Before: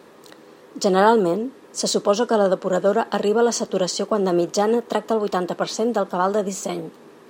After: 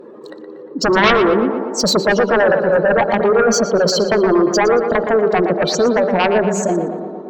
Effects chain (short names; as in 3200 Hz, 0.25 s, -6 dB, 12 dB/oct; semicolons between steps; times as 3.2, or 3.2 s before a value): spectral contrast raised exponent 2.1; de-hum 195.8 Hz, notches 11; dynamic EQ 8600 Hz, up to -7 dB, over -45 dBFS, Q 1.3; spring tank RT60 3.2 s, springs 45 ms, chirp 60 ms, DRR 17.5 dB; added harmonics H 3 -9 dB, 7 -10 dB, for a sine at -3.5 dBFS; tape echo 0.117 s, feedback 70%, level -6.5 dB, low-pass 2300 Hz; gain +3 dB